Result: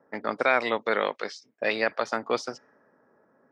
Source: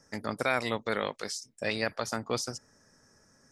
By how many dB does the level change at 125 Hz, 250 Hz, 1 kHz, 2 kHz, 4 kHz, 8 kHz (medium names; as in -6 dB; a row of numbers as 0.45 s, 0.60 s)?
-8.5 dB, +1.0 dB, +6.5 dB, +6.0 dB, 0.0 dB, -8.5 dB